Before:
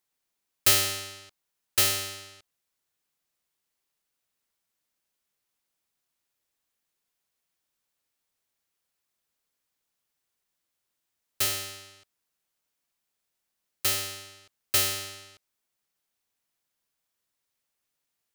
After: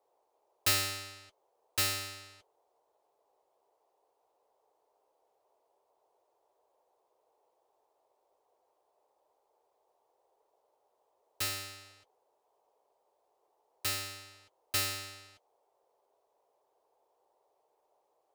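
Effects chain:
high-shelf EQ 7,600 Hz −5.5 dB
notch comb filter 190 Hz
noise in a band 390–970 Hz −72 dBFS
level −3.5 dB

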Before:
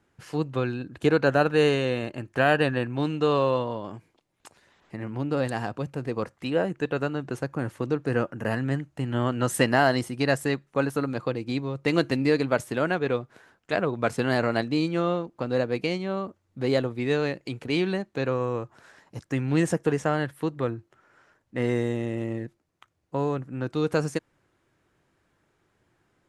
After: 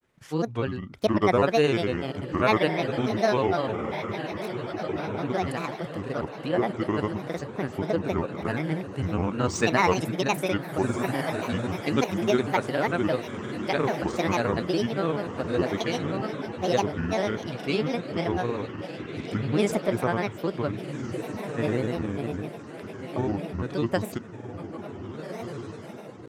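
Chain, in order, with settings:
feedback delay with all-pass diffusion 1,522 ms, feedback 49%, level −8 dB
granular cloud 100 ms, grains 20 per second, spray 34 ms, pitch spread up and down by 7 semitones

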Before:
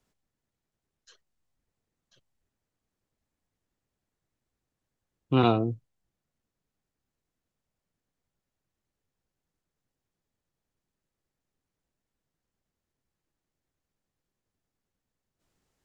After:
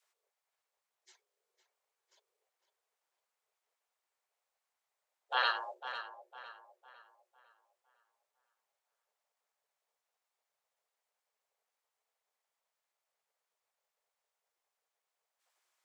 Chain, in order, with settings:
frequency shifter +360 Hz
gate on every frequency bin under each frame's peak −10 dB weak
tape delay 504 ms, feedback 41%, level −9.5 dB, low-pass 3,600 Hz

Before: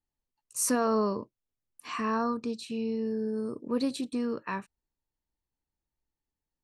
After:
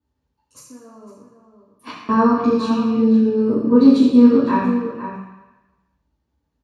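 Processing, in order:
in parallel at +3 dB: output level in coarse steps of 15 dB
on the sum: brickwall limiter −18.5 dBFS, peak gain reduction 8 dB
0:00.58–0:02.09: gate with flip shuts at −25 dBFS, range −29 dB
slap from a distant wall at 87 metres, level −9 dB
convolution reverb RT60 1.1 s, pre-delay 3 ms, DRR −9.5 dB
level −7.5 dB

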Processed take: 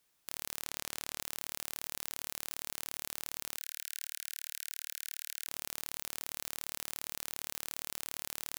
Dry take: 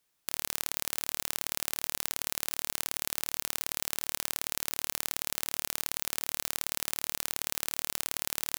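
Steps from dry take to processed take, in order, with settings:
0:00.65–0:01.21: high-shelf EQ 12,000 Hz −8.5 dB
brickwall limiter −13.5 dBFS, peak gain reduction 11 dB
0:03.57–0:05.47: Butterworth high-pass 1,500 Hz 96 dB per octave
level +1.5 dB

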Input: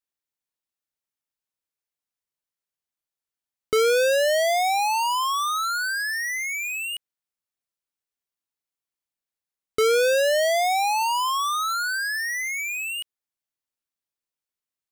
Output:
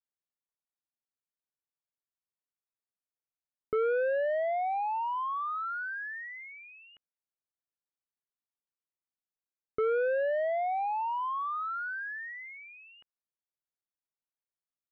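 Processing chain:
low-pass filter 1,700 Hz 24 dB per octave
level −8 dB

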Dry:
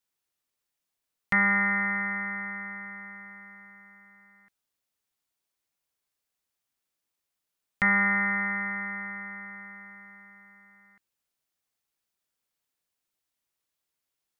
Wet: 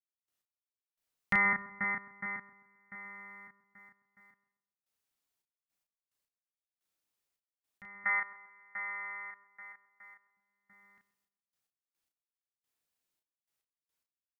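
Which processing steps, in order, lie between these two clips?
0:08.04–0:10.37: high-pass filter 600 Hz 12 dB per octave
gate pattern "..x....xxxx..x" 108 BPM −24 dB
double-tracking delay 33 ms −4 dB
feedback echo with a low-pass in the loop 131 ms, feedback 39%, low-pass 1,600 Hz, level −15.5 dB
level −4 dB

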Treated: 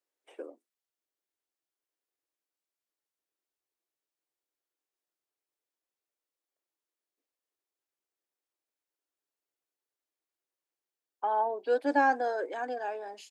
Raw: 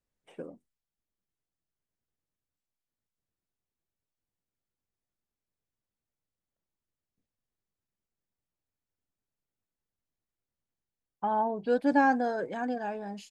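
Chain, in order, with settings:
Butterworth high-pass 300 Hz 48 dB per octave

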